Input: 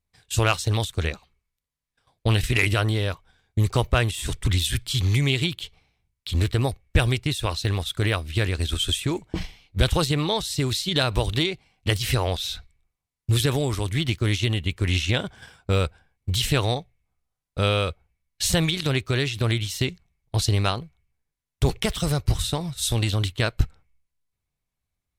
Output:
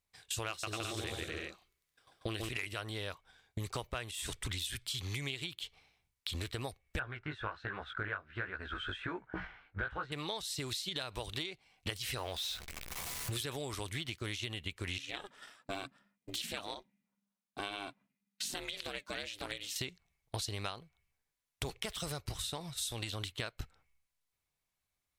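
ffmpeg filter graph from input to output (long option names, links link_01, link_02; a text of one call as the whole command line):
ffmpeg -i in.wav -filter_complex "[0:a]asettb=1/sr,asplit=3[link_01][link_02][link_03];[link_01]atrim=end=0.494[link_04];[link_02]atrim=start=0.49:end=2.49,asetpts=PTS-STARTPTS,afade=type=in:duration=0.004:curve=qsin,afade=type=out:start_time=1.996:duration=0.004:curve=qsin,equalizer=frequency=340:width_type=o:width=0.36:gain=9.5,bandreject=frequency=900:width=7.7,aecho=1:1:140|238|306.6|354.6|388.2:0.794|0.631|0.501|0.398|0.316,atrim=end_sample=88200[link_05];[link_03]atrim=start=2.486[link_06];[link_04][link_05]acrossfade=duration=0.004:curve1=hsin:curve2=qsin[link_07];[link_07][link_06]acrossfade=duration=0.004:curve1=qsin:curve2=hsin,asettb=1/sr,asplit=3[link_08][link_09][link_10];[link_08]atrim=end=6.994[link_11];[link_09]atrim=start=6.99:end=10.12,asetpts=PTS-STARTPTS,afade=type=in:duration=0.004:curve=qsin,afade=type=out:start_time=3.126:duration=0.004:curve=qsin,lowpass=frequency=1500:width_type=q:width=6.6,flanger=delay=15.5:depth=4.2:speed=1.3[link_12];[link_10]atrim=start=10.116[link_13];[link_11][link_12]acrossfade=duration=0.004:curve1=hsin:curve2=qsin[link_14];[link_14][link_13]acrossfade=duration=0.004:curve1=qsin:curve2=hsin,asettb=1/sr,asplit=3[link_15][link_16][link_17];[link_15]atrim=end=12.174[link_18];[link_16]atrim=start=12.17:end=13.43,asetpts=PTS-STARTPTS,afade=type=in:duration=0.004:curve=qsin,afade=type=out:start_time=1.256:duration=0.004:curve=qsin,aeval=exprs='val(0)+0.5*0.0251*sgn(val(0))':channel_layout=same,asplit=2[link_19][link_20];[link_20]adelay=14,volume=-11.5dB[link_21];[link_19][link_21]amix=inputs=2:normalize=0,atrim=end_sample=55566[link_22];[link_17]atrim=start=13.426[link_23];[link_18][link_22]acrossfade=duration=0.004:curve1=hsin:curve2=qsin[link_24];[link_24][link_23]acrossfade=duration=0.004:curve1=qsin:curve2=hsin,asettb=1/sr,asplit=3[link_25][link_26][link_27];[link_25]atrim=end=14.984[link_28];[link_26]atrim=start=14.98:end=19.76,asetpts=PTS-STARTPTS,afade=type=in:duration=0.004:curve=qsin,afade=type=out:start_time=4.776:duration=0.004:curve=qsin,equalizer=frequency=110:width=1.7:gain=-13,flanger=delay=0.4:depth=4.8:regen=65:speed=1.1:shape=triangular,aeval=exprs='val(0)*sin(2*PI*200*n/s)':channel_layout=same[link_29];[link_27]atrim=start=19.756[link_30];[link_28][link_29]acrossfade=duration=0.004:curve1=hsin:curve2=qsin[link_31];[link_31][link_30]acrossfade=duration=0.004:curve1=qsin:curve2=hsin,lowshelf=frequency=320:gain=-11.5,acompressor=threshold=-38dB:ratio=6,volume=1dB" out.wav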